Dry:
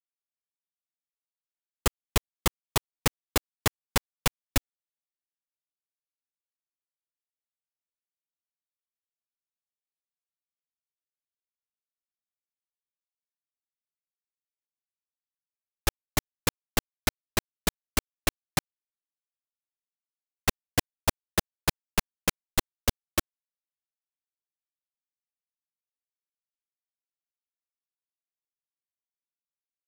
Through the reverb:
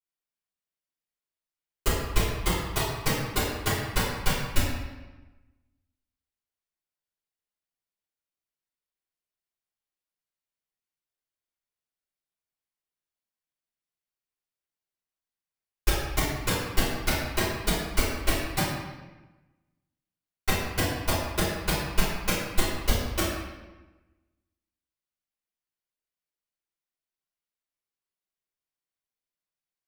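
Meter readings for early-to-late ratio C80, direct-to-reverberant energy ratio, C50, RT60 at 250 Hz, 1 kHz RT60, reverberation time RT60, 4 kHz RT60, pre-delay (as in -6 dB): 2.5 dB, -12.0 dB, -0.5 dB, 1.4 s, 1.1 s, 1.1 s, 0.90 s, 3 ms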